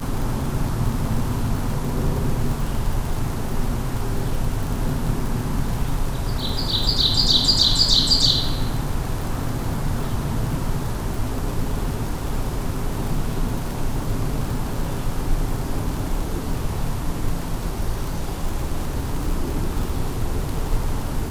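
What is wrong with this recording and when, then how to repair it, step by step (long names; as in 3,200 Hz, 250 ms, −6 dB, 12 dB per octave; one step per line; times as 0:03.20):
surface crackle 58 per second −26 dBFS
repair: click removal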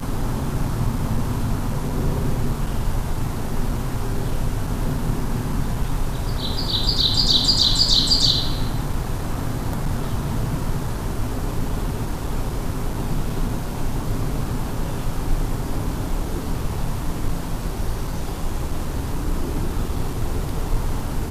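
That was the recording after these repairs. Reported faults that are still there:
none of them is left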